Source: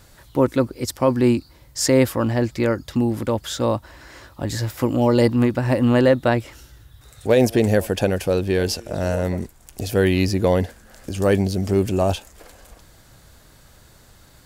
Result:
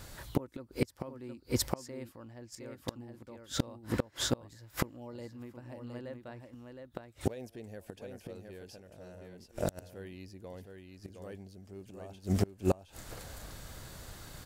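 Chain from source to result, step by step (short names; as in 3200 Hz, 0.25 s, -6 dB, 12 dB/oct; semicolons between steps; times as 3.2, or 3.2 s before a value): echo 0.715 s -5 dB; flipped gate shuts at -16 dBFS, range -30 dB; gain +1 dB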